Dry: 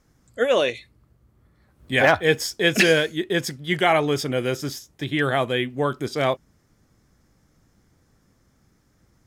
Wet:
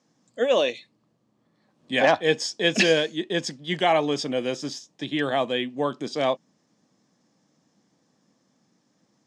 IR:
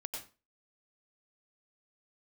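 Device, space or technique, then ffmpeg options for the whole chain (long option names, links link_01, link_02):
television speaker: -af "highpass=frequency=180:width=0.5412,highpass=frequency=180:width=1.3066,equalizer=frequency=390:width_type=q:width=4:gain=-6,equalizer=frequency=1400:width_type=q:width=4:gain=-10,equalizer=frequency=2100:width_type=q:width=4:gain=-6,lowpass=frequency=7200:width=0.5412,lowpass=frequency=7200:width=1.3066"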